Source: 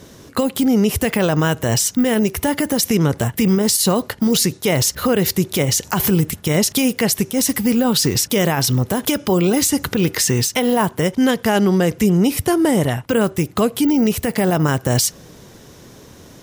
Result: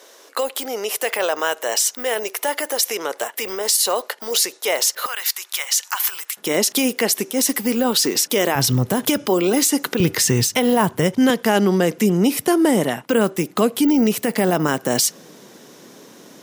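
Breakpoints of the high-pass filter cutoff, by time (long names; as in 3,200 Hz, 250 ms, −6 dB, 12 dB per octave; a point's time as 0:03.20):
high-pass filter 24 dB per octave
470 Hz
from 0:05.06 1,000 Hz
from 0:06.37 260 Hz
from 0:08.55 110 Hz
from 0:09.27 240 Hz
from 0:10.00 87 Hz
from 0:11.30 190 Hz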